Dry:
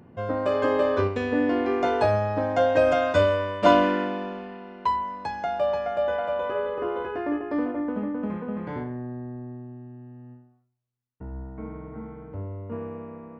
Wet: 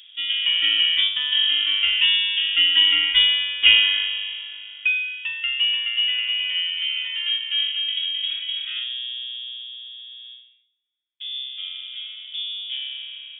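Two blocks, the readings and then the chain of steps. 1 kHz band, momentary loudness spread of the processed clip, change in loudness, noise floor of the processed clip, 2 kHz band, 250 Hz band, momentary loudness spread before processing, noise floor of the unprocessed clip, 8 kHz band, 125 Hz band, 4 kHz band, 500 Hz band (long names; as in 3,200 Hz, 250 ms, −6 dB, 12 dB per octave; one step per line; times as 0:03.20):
below −20 dB, 17 LU, +6.0 dB, −57 dBFS, +10.0 dB, below −25 dB, 18 LU, −61 dBFS, can't be measured, below −25 dB, +26.5 dB, below −35 dB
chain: voice inversion scrambler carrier 3,500 Hz
drawn EQ curve 100 Hz 0 dB, 200 Hz −11 dB, 290 Hz +6 dB, 580 Hz −11 dB, 1,900 Hz +6 dB
level −3 dB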